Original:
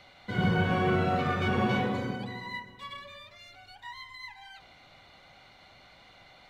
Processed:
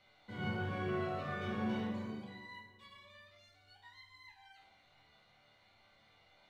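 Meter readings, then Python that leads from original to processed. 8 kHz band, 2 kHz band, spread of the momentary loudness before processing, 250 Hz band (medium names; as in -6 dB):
no reading, -12.0 dB, 20 LU, -9.5 dB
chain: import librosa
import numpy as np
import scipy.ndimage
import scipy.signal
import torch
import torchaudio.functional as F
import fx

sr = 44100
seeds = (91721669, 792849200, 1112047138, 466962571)

y = fx.resonator_bank(x, sr, root=38, chord='sus4', decay_s=0.6)
y = y * 10.0 ** (3.0 / 20.0)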